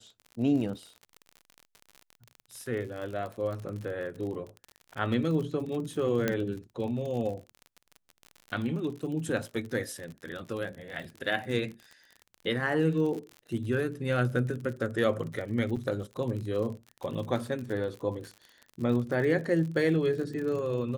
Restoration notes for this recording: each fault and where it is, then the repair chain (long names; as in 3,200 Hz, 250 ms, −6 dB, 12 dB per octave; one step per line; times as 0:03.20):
surface crackle 48 per second −36 dBFS
0:06.28: click −13 dBFS
0:15.76–0:15.77: drop-out 6 ms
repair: click removal
repair the gap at 0:15.76, 6 ms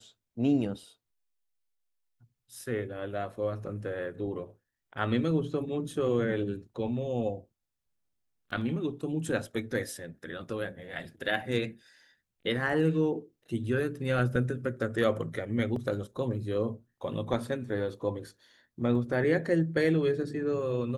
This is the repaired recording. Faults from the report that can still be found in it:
none of them is left